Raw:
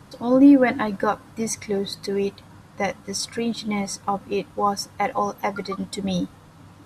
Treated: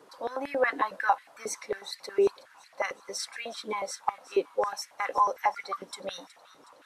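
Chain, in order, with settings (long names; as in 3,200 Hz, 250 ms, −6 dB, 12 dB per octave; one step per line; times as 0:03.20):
on a send: delay with a high-pass on its return 368 ms, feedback 58%, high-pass 3,200 Hz, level −16 dB
on the sum: high-pass on a step sequencer 11 Hz 420–2,000 Hz
level −8 dB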